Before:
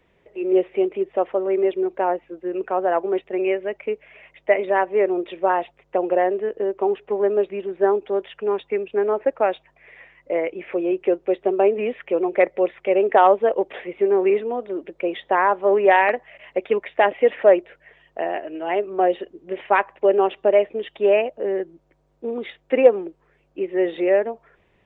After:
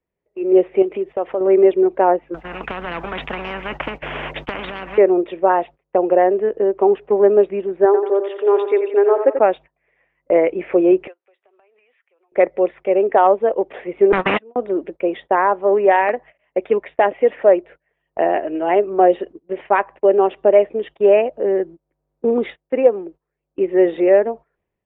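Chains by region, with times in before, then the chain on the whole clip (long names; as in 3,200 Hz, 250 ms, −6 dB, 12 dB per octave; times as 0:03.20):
0:00.82–0:01.41: high-shelf EQ 2,900 Hz +10 dB + downward compressor 2 to 1, threshold −30 dBFS
0:02.34–0:04.98: downward compressor 3 to 1, threshold −24 dBFS + every bin compressed towards the loudest bin 10 to 1
0:07.85–0:09.39: linear-phase brick-wall high-pass 260 Hz + repeating echo 88 ms, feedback 48%, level −8 dB
0:11.07–0:12.32: high-pass filter 1,500 Hz + downward compressor 16 to 1, threshold −41 dBFS
0:14.12–0:14.56: high-pass filter 120 Hz + noise gate −19 dBFS, range −49 dB + every bin compressed towards the loudest bin 10 to 1
whole clip: noise gate −38 dBFS, range −20 dB; automatic gain control; low-pass filter 1,300 Hz 6 dB per octave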